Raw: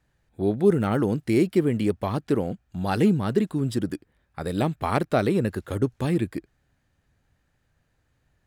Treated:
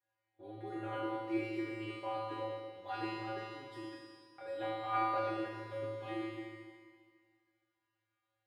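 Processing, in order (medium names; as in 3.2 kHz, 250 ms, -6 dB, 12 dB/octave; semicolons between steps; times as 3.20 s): three-band isolator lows -22 dB, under 350 Hz, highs -19 dB, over 3.8 kHz; feedback comb 110 Hz, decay 1.4 s, harmonics odd, mix 100%; Schroeder reverb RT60 1.9 s, combs from 25 ms, DRR 1 dB; trim +10.5 dB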